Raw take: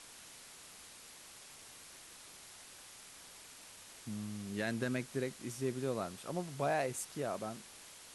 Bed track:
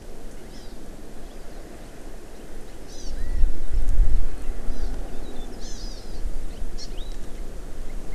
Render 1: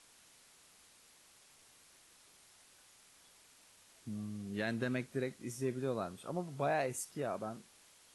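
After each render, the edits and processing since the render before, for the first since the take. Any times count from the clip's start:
noise reduction from a noise print 9 dB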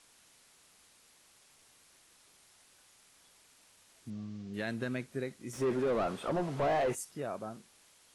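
0:04.10–0:04.54: low-pass filter 6,100 Hz 24 dB per octave
0:05.53–0:06.95: mid-hump overdrive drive 28 dB, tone 1,000 Hz, clips at −21.5 dBFS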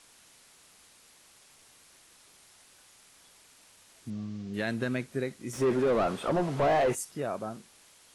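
level +5 dB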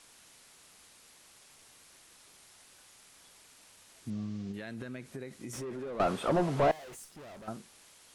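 0:04.51–0:06.00: downward compressor 8 to 1, threshold −37 dBFS
0:06.71–0:07.48: tube saturation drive 47 dB, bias 0.7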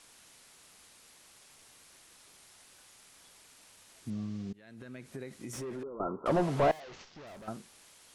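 0:04.53–0:05.18: fade in, from −24 dB
0:05.83–0:06.26: Chebyshev low-pass with heavy ripple 1,400 Hz, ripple 9 dB
0:06.80–0:07.27: variable-slope delta modulation 32 kbit/s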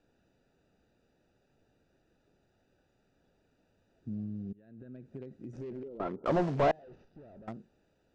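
adaptive Wiener filter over 41 samples
low-pass filter 6,900 Hz 24 dB per octave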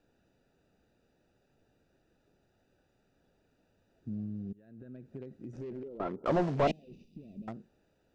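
0:06.67–0:07.48: drawn EQ curve 120 Hz 0 dB, 200 Hz +12 dB, 560 Hz −8 dB, 1,600 Hz −26 dB, 2,400 Hz +5 dB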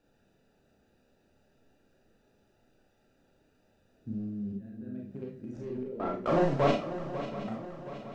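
feedback echo with a long and a short gap by turns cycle 723 ms, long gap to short 3 to 1, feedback 49%, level −12 dB
four-comb reverb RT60 0.31 s, combs from 28 ms, DRR −1 dB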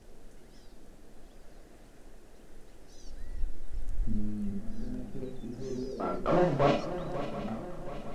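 mix in bed track −14 dB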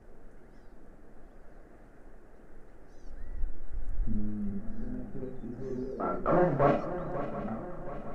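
high shelf with overshoot 2,300 Hz −12 dB, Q 1.5
notch filter 1,000 Hz, Q 23

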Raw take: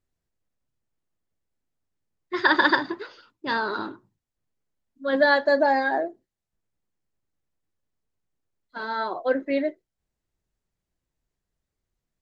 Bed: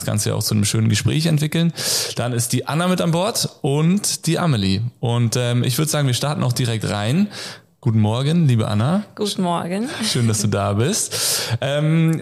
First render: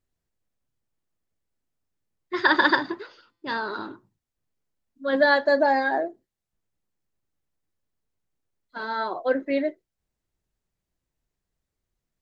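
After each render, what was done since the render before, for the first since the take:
0:03.01–0:03.90: tuned comb filter 170 Hz, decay 1.1 s, mix 30%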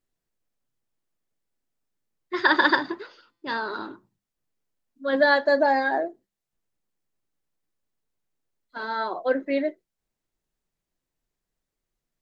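parametric band 72 Hz −9.5 dB 1.1 octaves
mains-hum notches 50/100/150/200 Hz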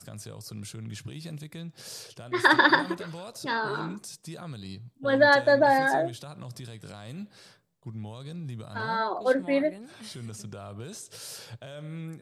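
mix in bed −22 dB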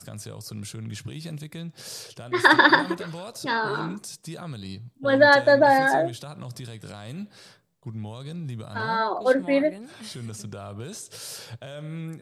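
level +3.5 dB

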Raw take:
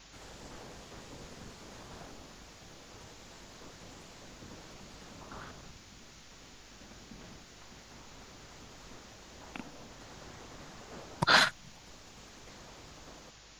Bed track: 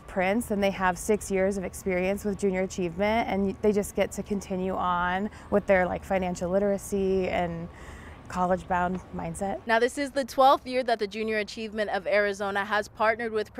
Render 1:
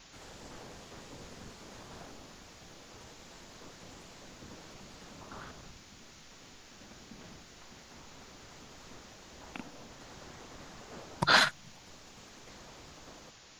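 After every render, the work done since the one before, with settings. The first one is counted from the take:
hum removal 50 Hz, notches 3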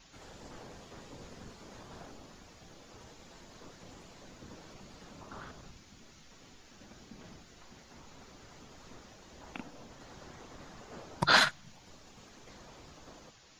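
broadband denoise 6 dB, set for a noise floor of −55 dBFS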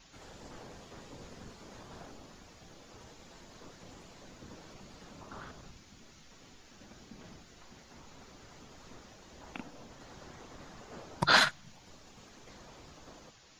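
no processing that can be heard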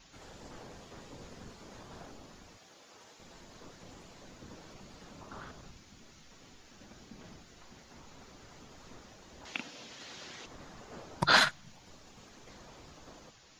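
0:02.57–0:03.20: high-pass filter 570 Hz 6 dB per octave
0:09.45–0:10.46: meter weighting curve D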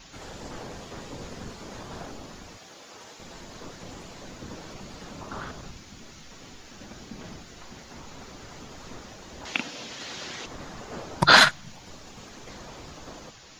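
level +10 dB
brickwall limiter −2 dBFS, peak gain reduction 2.5 dB

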